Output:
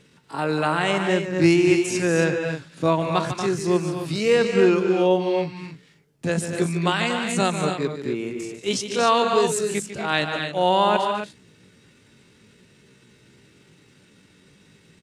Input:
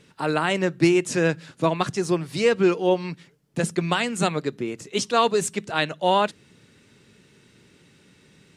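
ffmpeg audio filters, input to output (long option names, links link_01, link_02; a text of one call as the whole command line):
ffmpeg -i in.wav -af "atempo=0.57,aecho=1:1:148.7|236.2|274.1:0.316|0.398|0.355" out.wav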